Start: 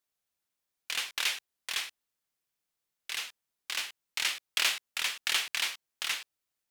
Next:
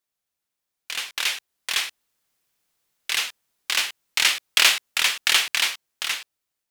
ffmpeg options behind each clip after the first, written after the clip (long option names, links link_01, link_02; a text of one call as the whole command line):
ffmpeg -i in.wav -af "dynaudnorm=framelen=470:gausssize=7:maxgain=11.5dB,volume=1.5dB" out.wav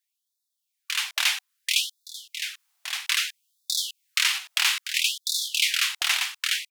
ffmpeg -i in.wav -af "aecho=1:1:1168:0.335,alimiter=limit=-11dB:level=0:latency=1:release=299,afftfilt=real='re*gte(b*sr/1024,630*pow(3500/630,0.5+0.5*sin(2*PI*0.61*pts/sr)))':imag='im*gte(b*sr/1024,630*pow(3500/630,0.5+0.5*sin(2*PI*0.61*pts/sr)))':win_size=1024:overlap=0.75,volume=2.5dB" out.wav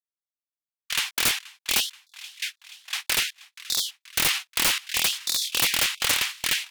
ffmpeg -i in.wav -af "agate=range=-24dB:threshold=-31dB:ratio=16:detection=peak,aecho=1:1:479|958|1437|1916|2395:0.0944|0.0548|0.0318|0.0184|0.0107,aeval=exprs='(mod(5.62*val(0)+1,2)-1)/5.62':channel_layout=same,volume=1.5dB" out.wav